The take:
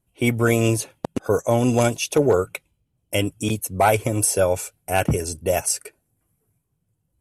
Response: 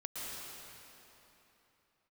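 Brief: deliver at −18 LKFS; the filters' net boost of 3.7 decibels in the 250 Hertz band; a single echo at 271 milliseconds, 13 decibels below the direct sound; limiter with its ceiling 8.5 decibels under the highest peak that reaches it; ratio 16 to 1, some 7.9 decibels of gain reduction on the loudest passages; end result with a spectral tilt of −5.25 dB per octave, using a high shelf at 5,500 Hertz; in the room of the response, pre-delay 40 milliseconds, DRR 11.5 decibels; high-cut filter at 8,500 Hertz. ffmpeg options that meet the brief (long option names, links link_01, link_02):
-filter_complex "[0:a]lowpass=8500,equalizer=frequency=250:width_type=o:gain=4.5,highshelf=frequency=5500:gain=-7.5,acompressor=threshold=-19dB:ratio=16,alimiter=limit=-15.5dB:level=0:latency=1,aecho=1:1:271:0.224,asplit=2[link_01][link_02];[1:a]atrim=start_sample=2205,adelay=40[link_03];[link_02][link_03]afir=irnorm=-1:irlink=0,volume=-13dB[link_04];[link_01][link_04]amix=inputs=2:normalize=0,volume=9.5dB"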